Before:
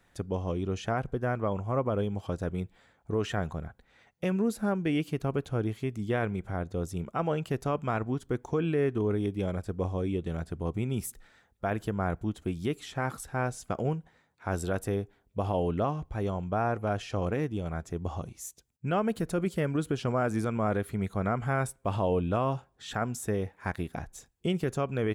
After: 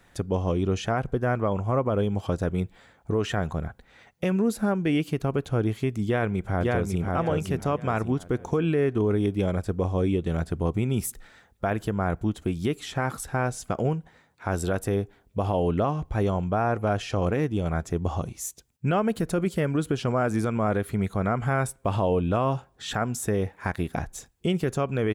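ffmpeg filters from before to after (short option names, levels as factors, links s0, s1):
-filter_complex "[0:a]asplit=2[s0][s1];[s1]afade=t=in:st=6.05:d=0.01,afade=t=out:st=7.06:d=0.01,aecho=0:1:550|1100|1650|2200|2750:0.707946|0.247781|0.0867234|0.0303532|0.0106236[s2];[s0][s2]amix=inputs=2:normalize=0,alimiter=limit=0.075:level=0:latency=1:release=263,volume=2.37"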